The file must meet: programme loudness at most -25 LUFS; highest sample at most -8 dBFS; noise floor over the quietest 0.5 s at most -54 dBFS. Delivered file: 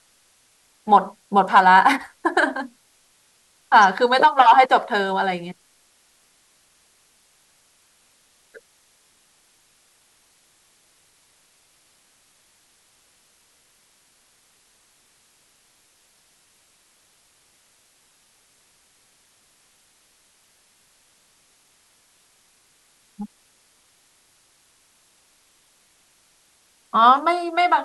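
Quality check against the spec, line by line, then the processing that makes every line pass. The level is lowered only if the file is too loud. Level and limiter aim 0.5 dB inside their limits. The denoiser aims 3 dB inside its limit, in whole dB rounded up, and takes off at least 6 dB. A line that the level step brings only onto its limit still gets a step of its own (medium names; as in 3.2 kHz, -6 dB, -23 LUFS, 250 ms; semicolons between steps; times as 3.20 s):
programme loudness -17.0 LUFS: fail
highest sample -2.5 dBFS: fail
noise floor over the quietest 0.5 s -60 dBFS: pass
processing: trim -8.5 dB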